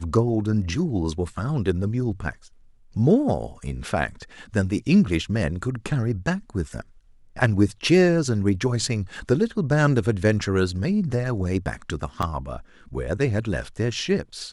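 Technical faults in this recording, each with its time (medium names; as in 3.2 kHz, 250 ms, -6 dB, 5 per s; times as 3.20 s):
12.22–12.23 s: dropout 6.3 ms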